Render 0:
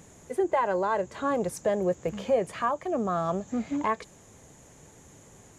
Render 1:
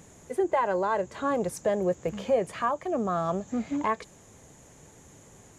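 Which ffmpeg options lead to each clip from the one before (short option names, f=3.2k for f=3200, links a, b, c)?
-af anull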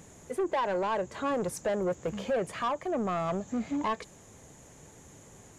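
-af "asoftclip=type=tanh:threshold=-24dB"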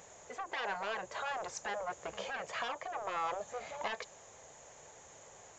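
-af "aresample=16000,aresample=44100,afftfilt=real='re*lt(hypot(re,im),0.141)':imag='im*lt(hypot(re,im),0.141)':win_size=1024:overlap=0.75,lowshelf=f=400:t=q:w=1.5:g=-12.5"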